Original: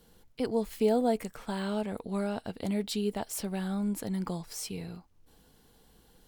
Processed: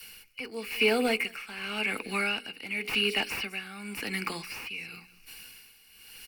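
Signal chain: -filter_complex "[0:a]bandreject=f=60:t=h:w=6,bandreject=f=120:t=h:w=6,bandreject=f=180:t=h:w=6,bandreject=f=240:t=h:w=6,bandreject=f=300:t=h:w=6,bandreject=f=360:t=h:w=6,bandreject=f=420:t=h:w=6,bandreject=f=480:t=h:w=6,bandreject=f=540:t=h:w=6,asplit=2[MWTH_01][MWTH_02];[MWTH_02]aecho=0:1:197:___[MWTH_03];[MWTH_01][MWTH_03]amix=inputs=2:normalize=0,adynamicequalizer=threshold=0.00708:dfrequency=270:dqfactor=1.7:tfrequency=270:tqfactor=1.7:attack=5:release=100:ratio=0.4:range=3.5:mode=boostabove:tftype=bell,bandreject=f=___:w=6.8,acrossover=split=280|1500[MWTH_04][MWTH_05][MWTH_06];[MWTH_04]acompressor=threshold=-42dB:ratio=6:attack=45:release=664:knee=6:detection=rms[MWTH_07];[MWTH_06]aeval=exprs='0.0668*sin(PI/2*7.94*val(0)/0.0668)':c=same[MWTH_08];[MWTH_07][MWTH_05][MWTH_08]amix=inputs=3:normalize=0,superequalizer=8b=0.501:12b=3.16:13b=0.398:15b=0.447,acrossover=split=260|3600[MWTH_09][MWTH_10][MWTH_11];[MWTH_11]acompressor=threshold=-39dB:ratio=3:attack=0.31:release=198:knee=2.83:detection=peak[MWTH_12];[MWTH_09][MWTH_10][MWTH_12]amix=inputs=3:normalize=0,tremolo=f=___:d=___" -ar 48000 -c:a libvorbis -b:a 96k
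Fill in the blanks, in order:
0.0708, 950, 0.93, 0.76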